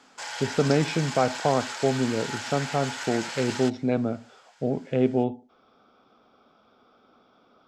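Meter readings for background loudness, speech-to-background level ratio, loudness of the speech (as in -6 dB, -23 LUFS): -33.5 LUFS, 7.0 dB, -26.5 LUFS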